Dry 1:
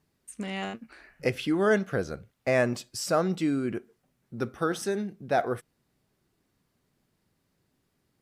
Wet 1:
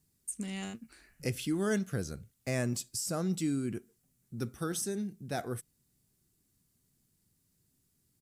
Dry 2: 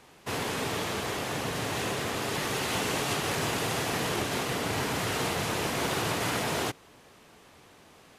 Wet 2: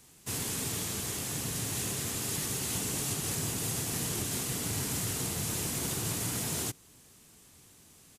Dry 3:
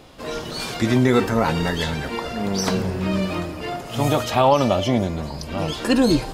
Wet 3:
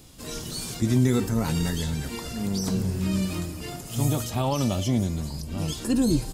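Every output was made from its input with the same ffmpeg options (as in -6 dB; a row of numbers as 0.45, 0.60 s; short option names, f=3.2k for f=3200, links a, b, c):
-filter_complex "[0:a]firequalizer=gain_entry='entry(110,0);entry(560,-13);entry(7600,8)':delay=0.05:min_phase=1,acrossover=split=1100[a][b];[b]alimiter=level_in=0.5dB:limit=-24dB:level=0:latency=1:release=299,volume=-0.5dB[c];[a][c]amix=inputs=2:normalize=0"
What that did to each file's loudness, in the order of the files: -6.5, -2.0, -5.0 LU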